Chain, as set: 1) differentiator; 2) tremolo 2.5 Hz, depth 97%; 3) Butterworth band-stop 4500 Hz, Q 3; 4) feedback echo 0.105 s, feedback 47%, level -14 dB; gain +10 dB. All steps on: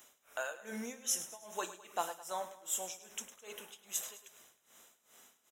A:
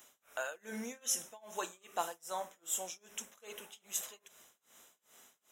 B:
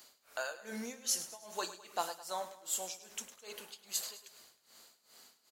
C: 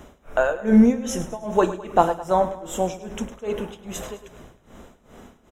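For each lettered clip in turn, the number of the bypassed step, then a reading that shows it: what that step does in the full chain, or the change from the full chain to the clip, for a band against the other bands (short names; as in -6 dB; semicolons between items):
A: 4, echo-to-direct -13.0 dB to none; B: 3, 4 kHz band +4.0 dB; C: 1, 8 kHz band -20.0 dB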